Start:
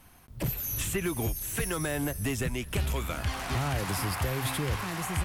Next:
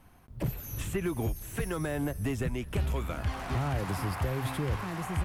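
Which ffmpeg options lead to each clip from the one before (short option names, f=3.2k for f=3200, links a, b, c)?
-af "highshelf=f=2.1k:g=-10.5"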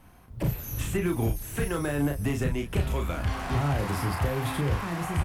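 -filter_complex "[0:a]asplit=2[a][b];[b]adelay=35,volume=-5dB[c];[a][c]amix=inputs=2:normalize=0,volume=3dB"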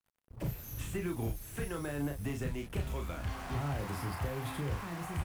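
-af "acrusher=bits=6:mix=0:aa=0.5,volume=-9dB"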